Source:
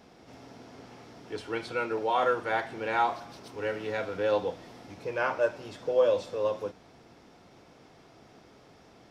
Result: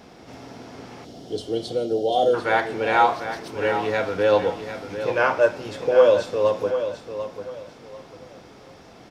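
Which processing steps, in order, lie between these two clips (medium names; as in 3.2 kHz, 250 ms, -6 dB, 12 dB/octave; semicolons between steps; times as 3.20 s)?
time-frequency box 1.05–2.34 s, 780–2800 Hz -25 dB; on a send: feedback delay 745 ms, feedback 27%, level -10 dB; on the sum: trim +8.5 dB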